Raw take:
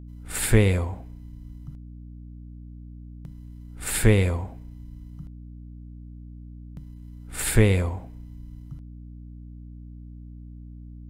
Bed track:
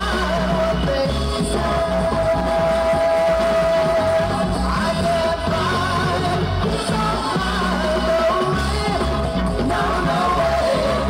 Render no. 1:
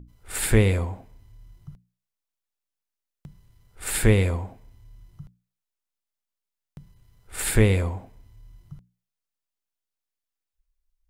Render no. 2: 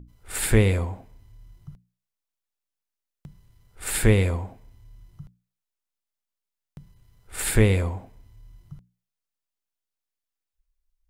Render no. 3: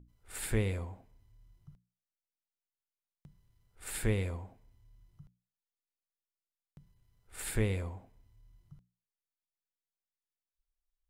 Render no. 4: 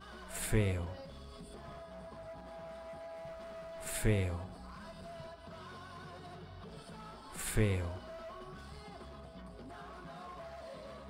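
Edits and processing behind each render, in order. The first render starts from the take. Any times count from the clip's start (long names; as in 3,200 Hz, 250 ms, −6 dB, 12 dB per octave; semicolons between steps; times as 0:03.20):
mains-hum notches 60/120/180/240/300 Hz
no processing that can be heard
level −12.5 dB
mix in bed track −30 dB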